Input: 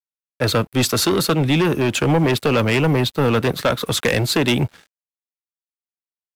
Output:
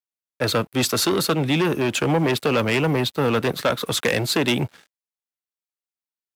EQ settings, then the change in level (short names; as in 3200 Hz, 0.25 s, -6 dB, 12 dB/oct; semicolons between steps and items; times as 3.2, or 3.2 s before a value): HPF 150 Hz 6 dB/oct; -2.0 dB